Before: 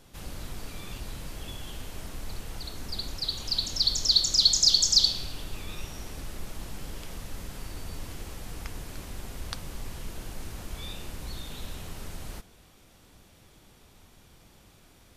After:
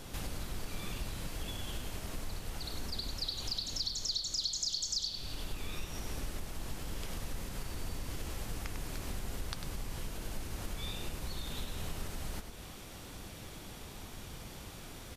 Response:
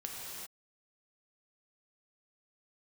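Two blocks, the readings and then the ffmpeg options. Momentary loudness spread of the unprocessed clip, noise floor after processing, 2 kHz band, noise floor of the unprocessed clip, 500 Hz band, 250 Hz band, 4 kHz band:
22 LU, -48 dBFS, -1.5 dB, -57 dBFS, -1.0 dB, -1.5 dB, -12.0 dB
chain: -filter_complex "[0:a]acompressor=threshold=-45dB:ratio=5,asplit=2[a][b];[b]aecho=0:1:99:0.422[c];[a][c]amix=inputs=2:normalize=0,volume=8.5dB"

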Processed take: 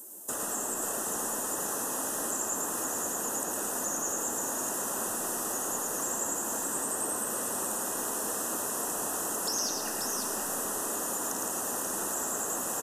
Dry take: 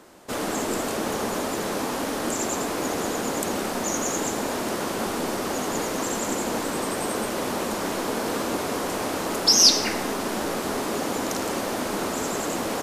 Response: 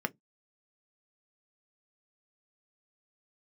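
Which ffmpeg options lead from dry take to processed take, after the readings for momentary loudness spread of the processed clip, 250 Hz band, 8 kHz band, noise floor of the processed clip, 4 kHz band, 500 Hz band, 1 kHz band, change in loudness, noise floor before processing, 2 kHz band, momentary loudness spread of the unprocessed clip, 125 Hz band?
1 LU, -12.0 dB, -0.5 dB, -34 dBFS, -15.5 dB, -10.5 dB, -7.5 dB, -5.5 dB, -29 dBFS, -9.0 dB, 4 LU, -13.5 dB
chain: -filter_complex "[0:a]acrossover=split=6200[a][b];[b]acompressor=threshold=-37dB:ratio=4:attack=1:release=60[c];[a][c]amix=inputs=2:normalize=0,afftdn=nr=12:nf=-44,aemphasis=mode=production:type=50kf,acrossover=split=120|1400[d][e][f];[f]aexciter=amount=15.5:drive=3.4:freq=6.6k[g];[d][e][g]amix=inputs=3:normalize=0,acrossover=split=860|1900|7800[h][i][j][k];[h]acompressor=threshold=-38dB:ratio=4[l];[i]acompressor=threshold=-39dB:ratio=4[m];[j]acompressor=threshold=-38dB:ratio=4[n];[k]acompressor=threshold=-44dB:ratio=4[o];[l][m][n][o]amix=inputs=4:normalize=0,asuperstop=centerf=2200:order=8:qfactor=4.2,lowshelf=f=190:g=-4.5,asplit=2[p][q];[q]aecho=0:1:110|535:0.562|0.531[r];[p][r]amix=inputs=2:normalize=0,volume=-3dB"

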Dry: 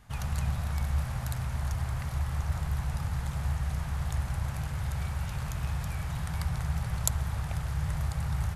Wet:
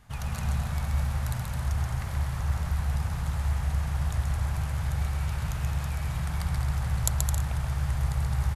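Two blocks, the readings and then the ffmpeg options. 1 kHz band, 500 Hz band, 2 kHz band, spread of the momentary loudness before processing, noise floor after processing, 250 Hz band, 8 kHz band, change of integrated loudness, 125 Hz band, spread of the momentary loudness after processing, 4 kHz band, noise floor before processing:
+2.0 dB, +2.0 dB, +2.0 dB, 3 LU, -34 dBFS, +1.5 dB, +2.0 dB, +3.0 dB, +3.0 dB, 3 LU, +2.0 dB, -36 dBFS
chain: -af "aecho=1:1:130|214.5|269.4|305.1|328.3:0.631|0.398|0.251|0.158|0.1"

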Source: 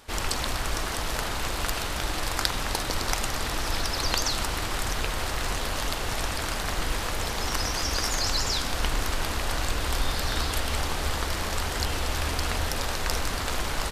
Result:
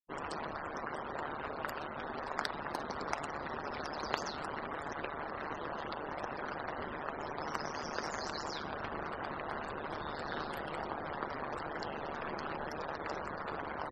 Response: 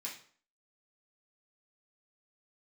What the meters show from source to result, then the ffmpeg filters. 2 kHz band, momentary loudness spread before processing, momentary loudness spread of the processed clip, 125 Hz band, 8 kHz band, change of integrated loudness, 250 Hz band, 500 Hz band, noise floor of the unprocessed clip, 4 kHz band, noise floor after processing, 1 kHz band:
-10.0 dB, 4 LU, 2 LU, -18.0 dB, -24.0 dB, -11.5 dB, -8.0 dB, -6.0 dB, -31 dBFS, -19.5 dB, -43 dBFS, -6.0 dB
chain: -filter_complex "[0:a]afftfilt=real='re*gte(hypot(re,im),0.0398)':imag='im*gte(hypot(re,im),0.0398)':win_size=1024:overlap=0.75,acrossover=split=170 2100:gain=0.0631 1 0.224[a][b][c];[a][b][c]amix=inputs=3:normalize=0,aeval=exprs='val(0)*sin(2*PI*74*n/s)':c=same,volume=-2dB"

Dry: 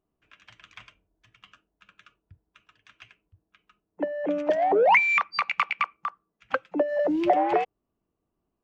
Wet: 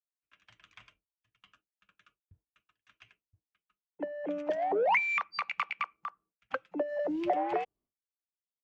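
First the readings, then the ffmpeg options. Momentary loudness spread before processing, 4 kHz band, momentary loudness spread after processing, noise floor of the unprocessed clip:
14 LU, -8.0 dB, 14 LU, -82 dBFS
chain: -af "agate=range=-33dB:threshold=-52dB:ratio=3:detection=peak,volume=-8dB"

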